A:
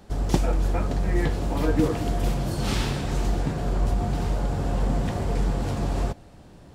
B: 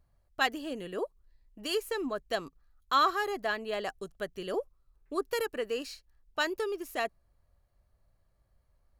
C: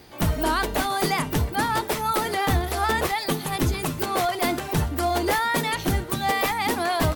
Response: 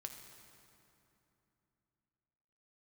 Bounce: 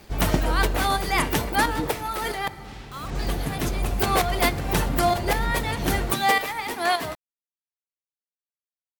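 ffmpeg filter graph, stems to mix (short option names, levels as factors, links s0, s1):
-filter_complex "[0:a]highshelf=f=9100:g=-10,volume=3.98,afade=t=out:st=0.61:d=0.44:silence=0.473151,afade=t=out:st=1.87:d=0.26:silence=0.375837,afade=t=in:st=2.95:d=0.22:silence=0.223872[s0];[1:a]acrusher=bits=4:mix=0:aa=0.000001,volume=0.2,asplit=2[s1][s2];[2:a]highpass=f=310:p=1,aeval=exprs='sgn(val(0))*max(abs(val(0))-0.00237,0)':c=same,volume=1.33,asplit=3[s3][s4][s5];[s3]atrim=end=2.48,asetpts=PTS-STARTPTS,afade=t=out:st=2.476:d=0.004:c=hsin[s6];[s4]atrim=start=2.48:end=3.19,asetpts=PTS-STARTPTS,volume=0[s7];[s5]atrim=start=3.19,asetpts=PTS-STARTPTS,afade=t=in:d=0.004:c=hsin[s8];[s6][s7][s8]concat=n=3:v=0:a=1,asplit=2[s9][s10];[s10]volume=0.316[s11];[s2]apad=whole_len=315337[s12];[s9][s12]sidechaincompress=threshold=0.00141:ratio=8:attack=12:release=121[s13];[3:a]atrim=start_sample=2205[s14];[s11][s14]afir=irnorm=-1:irlink=0[s15];[s0][s1][s13][s15]amix=inputs=4:normalize=0,equalizer=f=2300:w=1.5:g=2.5"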